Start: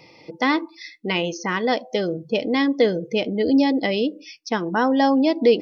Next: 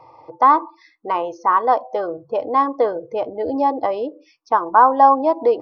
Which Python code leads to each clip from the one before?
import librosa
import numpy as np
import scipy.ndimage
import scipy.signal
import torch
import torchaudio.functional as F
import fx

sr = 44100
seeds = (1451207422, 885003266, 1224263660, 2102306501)

y = fx.curve_eq(x, sr, hz=(130.0, 180.0, 300.0, 430.0, 1100.0, 2000.0, 2900.0), db=(0, -21, -6, -3, 15, -13, -17))
y = y * 10.0 ** (1.0 / 20.0)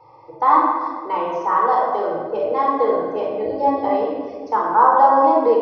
y = fx.room_shoebox(x, sr, seeds[0], volume_m3=1800.0, walls='mixed', distance_m=4.3)
y = y * 10.0 ** (-7.0 / 20.0)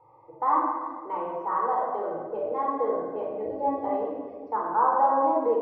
y = scipy.signal.sosfilt(scipy.signal.butter(2, 1600.0, 'lowpass', fs=sr, output='sos'), x)
y = y * 10.0 ** (-8.5 / 20.0)